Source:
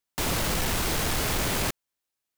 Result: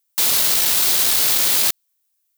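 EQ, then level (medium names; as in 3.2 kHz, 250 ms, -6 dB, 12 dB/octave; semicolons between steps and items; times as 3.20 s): RIAA curve recording; dynamic bell 4 kHz, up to +6 dB, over -40 dBFS, Q 1.6; 0.0 dB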